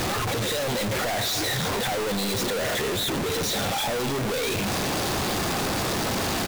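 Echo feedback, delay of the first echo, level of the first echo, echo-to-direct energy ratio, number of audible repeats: no regular repeats, 290 ms, -12.5 dB, -12.5 dB, 1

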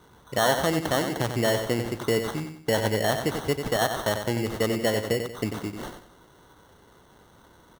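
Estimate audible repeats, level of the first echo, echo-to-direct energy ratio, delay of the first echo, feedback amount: 4, -7.5 dB, -7.0 dB, 93 ms, 36%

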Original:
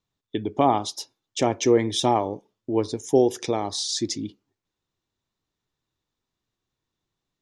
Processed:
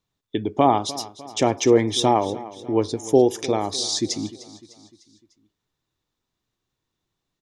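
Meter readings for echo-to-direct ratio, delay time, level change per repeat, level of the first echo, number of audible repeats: -16.5 dB, 301 ms, -6.0 dB, -17.5 dB, 3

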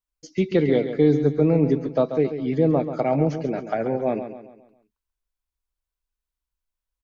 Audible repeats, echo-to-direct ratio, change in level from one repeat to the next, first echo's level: 4, -9.0 dB, -7.5 dB, -10.0 dB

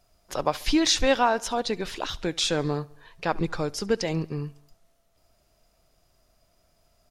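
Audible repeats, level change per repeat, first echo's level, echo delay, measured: 3, -5.0 dB, -24.0 dB, 69 ms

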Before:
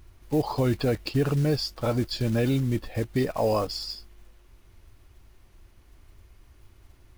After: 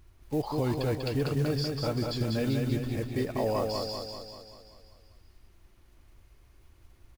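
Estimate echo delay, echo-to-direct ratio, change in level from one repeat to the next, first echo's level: 194 ms, -2.5 dB, -5.0 dB, -4.0 dB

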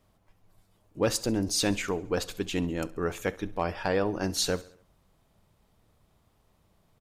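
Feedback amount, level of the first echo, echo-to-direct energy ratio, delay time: 53%, -20.5 dB, -19.0 dB, 68 ms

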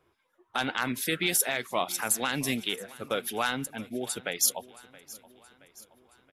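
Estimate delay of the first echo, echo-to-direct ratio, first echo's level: 673 ms, -19.0 dB, -20.5 dB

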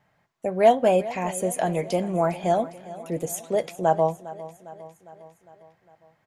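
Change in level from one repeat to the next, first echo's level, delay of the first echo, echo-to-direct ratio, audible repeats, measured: -4.5 dB, -17.0 dB, 405 ms, -15.0 dB, 4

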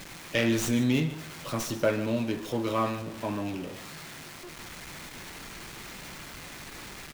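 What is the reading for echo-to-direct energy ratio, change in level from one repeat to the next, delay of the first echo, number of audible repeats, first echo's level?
-15.0 dB, no regular repeats, 147 ms, 1, -15.0 dB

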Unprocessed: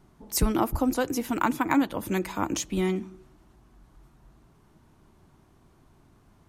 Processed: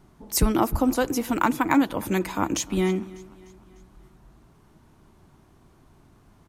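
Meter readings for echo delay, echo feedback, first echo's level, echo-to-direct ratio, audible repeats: 299 ms, 53%, -22.0 dB, -20.5 dB, 3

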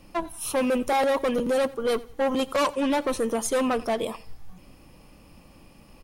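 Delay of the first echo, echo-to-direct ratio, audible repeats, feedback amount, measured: 89 ms, -20.5 dB, 2, 35%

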